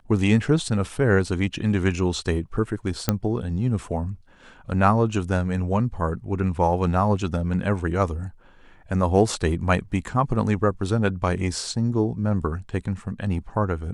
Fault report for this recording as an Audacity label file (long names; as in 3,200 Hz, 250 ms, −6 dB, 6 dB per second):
3.090000	3.090000	click −5 dBFS